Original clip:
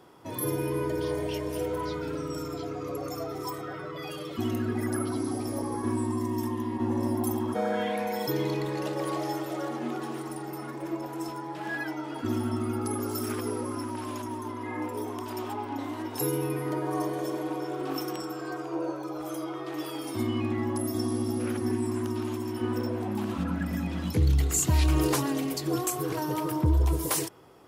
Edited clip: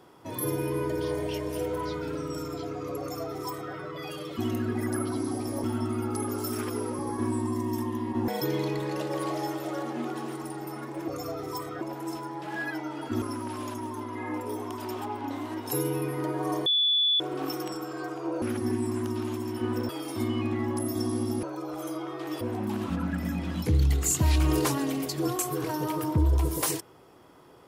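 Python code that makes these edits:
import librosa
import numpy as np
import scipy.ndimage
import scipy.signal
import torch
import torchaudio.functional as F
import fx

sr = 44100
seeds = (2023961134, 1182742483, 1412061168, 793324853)

y = fx.edit(x, sr, fx.duplicate(start_s=3.0, length_s=0.73, to_s=10.94),
    fx.cut(start_s=6.93, length_s=1.21),
    fx.move(start_s=12.35, length_s=1.35, to_s=5.64),
    fx.bleep(start_s=17.14, length_s=0.54, hz=3450.0, db=-20.5),
    fx.swap(start_s=18.9, length_s=0.98, other_s=21.42, other_length_s=1.47), tone=tone)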